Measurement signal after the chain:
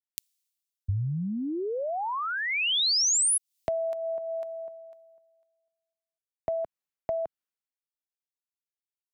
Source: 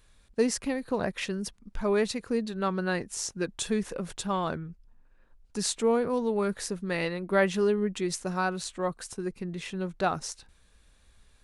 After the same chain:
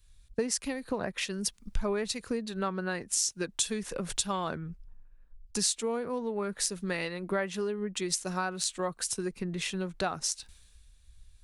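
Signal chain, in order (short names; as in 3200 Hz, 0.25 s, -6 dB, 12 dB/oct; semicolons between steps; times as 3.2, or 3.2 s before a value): high shelf 2000 Hz +8 dB; compressor 8:1, threshold -36 dBFS; three-band expander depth 70%; gain +6.5 dB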